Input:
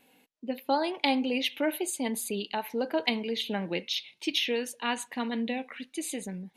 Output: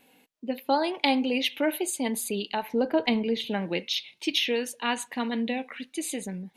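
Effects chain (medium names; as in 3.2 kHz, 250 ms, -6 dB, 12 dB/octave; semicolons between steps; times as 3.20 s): 2.62–3.47 s: tilt EQ -2 dB/octave; trim +2.5 dB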